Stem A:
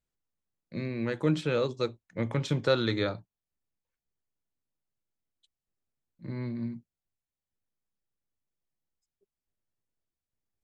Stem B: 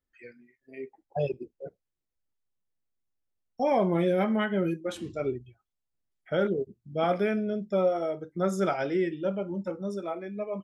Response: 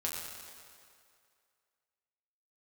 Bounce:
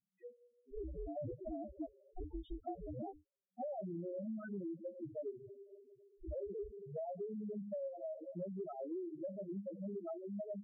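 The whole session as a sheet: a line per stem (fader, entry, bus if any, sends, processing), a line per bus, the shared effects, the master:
+1.0 dB, 0.00 s, no send, reverb removal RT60 0.79 s; treble shelf 6.1 kHz -11 dB; polarity switched at an audio rate 190 Hz
-5.0 dB, 0.00 s, send -9.5 dB, bit crusher 8-bit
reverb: on, RT60 2.3 s, pre-delay 6 ms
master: loudest bins only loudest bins 2; compression 12:1, threshold -40 dBFS, peak gain reduction 15.5 dB

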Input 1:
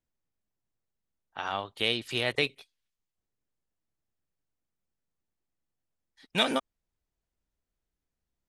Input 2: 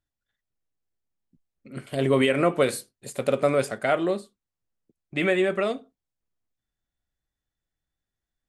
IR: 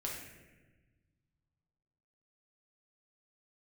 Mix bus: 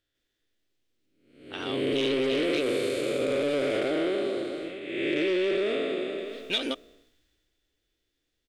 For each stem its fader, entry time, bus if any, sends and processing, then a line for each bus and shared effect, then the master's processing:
+1.0 dB, 0.15 s, no send, no echo send, auto duck -8 dB, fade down 0.25 s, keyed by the second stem
+1.0 dB, 0.00 s, no send, echo send -16 dB, spectral blur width 495 ms; decay stretcher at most 30 dB/s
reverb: none
echo: delay 631 ms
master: saturation -25 dBFS, distortion -10 dB; FFT filter 110 Hz 0 dB, 190 Hz -4 dB, 300 Hz +11 dB, 470 Hz +9 dB, 870 Hz -3 dB, 3.2 kHz +13 dB, 9.7 kHz +1 dB; compression, threshold -23 dBFS, peak gain reduction 5.5 dB

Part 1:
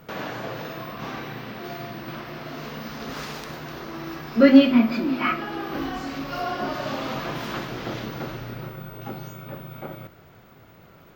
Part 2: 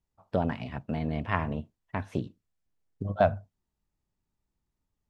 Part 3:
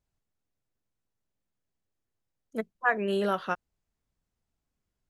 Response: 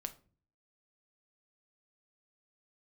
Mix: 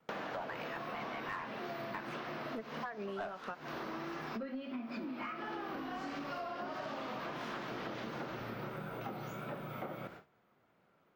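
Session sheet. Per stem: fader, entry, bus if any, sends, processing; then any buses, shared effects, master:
-8.0 dB, 0.00 s, bus A, no send, treble shelf 4.9 kHz +5.5 dB; vibrato 1.5 Hz 55 cents
+1.0 dB, 0.00 s, no bus, no send, Chebyshev high-pass 1.2 kHz, order 2
-0.5 dB, 0.00 s, bus A, no send, none
bus A: 0.0 dB, gate with hold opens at -44 dBFS; compression 10:1, threshold -37 dBFS, peak gain reduction 22 dB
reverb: none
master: peaking EQ 200 Hz +4.5 dB 0.68 oct; overdrive pedal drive 20 dB, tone 1.2 kHz, clips at -16.5 dBFS; compression 6:1, threshold -39 dBFS, peak gain reduction 15 dB

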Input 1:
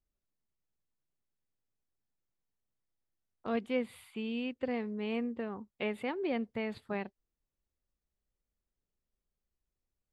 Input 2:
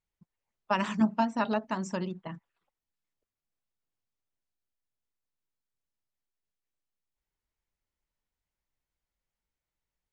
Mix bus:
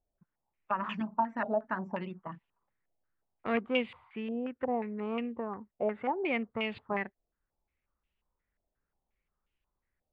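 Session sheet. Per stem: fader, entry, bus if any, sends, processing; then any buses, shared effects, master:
0.0 dB, 0.00 s, no send, self-modulated delay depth 0.067 ms
-5.5 dB, 0.00 s, no send, compression 2.5:1, threshold -31 dBFS, peak gain reduction 8 dB; auto duck -9 dB, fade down 1.70 s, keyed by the first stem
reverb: none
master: gain riding within 4 dB 2 s; step-sequenced low-pass 5.6 Hz 680–2800 Hz

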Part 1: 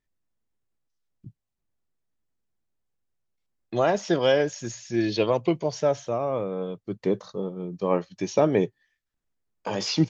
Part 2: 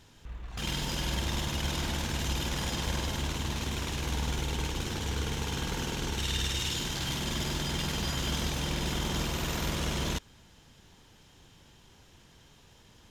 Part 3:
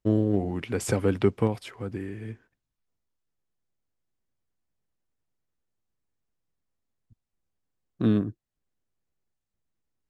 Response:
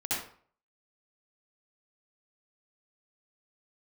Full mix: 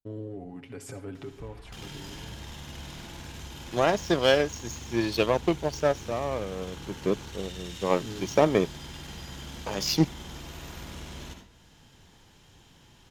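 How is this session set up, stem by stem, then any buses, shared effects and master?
+1.5 dB, 0.00 s, no send, power-law waveshaper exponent 1.4; treble shelf 4.8 kHz +11.5 dB
-2.5 dB, 1.15 s, send -8 dB, compression 3:1, threshold -43 dBFS, peak gain reduction 12 dB
-14.0 dB, 0.00 s, send -16.5 dB, comb 7.2 ms, depth 62%; peak limiter -17.5 dBFS, peak gain reduction 9.5 dB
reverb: on, RT60 0.50 s, pre-delay 59 ms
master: none

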